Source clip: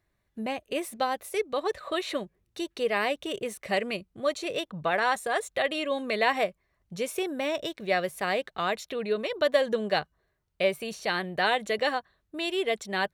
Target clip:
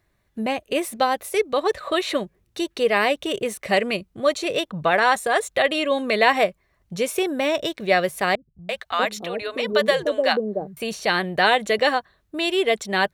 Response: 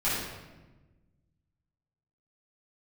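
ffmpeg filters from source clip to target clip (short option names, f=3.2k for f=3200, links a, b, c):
-filter_complex "[0:a]asettb=1/sr,asplit=3[a][b][c];[a]atrim=end=8.354[d];[b]atrim=start=8.35:end=10.77,asetpts=PTS-STARTPTS,afade=t=in:d=0.004:c=qsin,afade=t=out:st=2.416:d=0.004:c=qsin,acrossover=split=170|560[e][f][g];[g]adelay=340[h];[f]adelay=640[i];[e][i][h]amix=inputs=3:normalize=0,atrim=end_sample=106722[j];[c]atrim=start=10.766[k];[d][j]acrossfade=d=0.004:c1=hsin:c2=qsin[l];[l][k]acrossfade=d=0.004:c1=qsin:c2=hsin,volume=7.5dB"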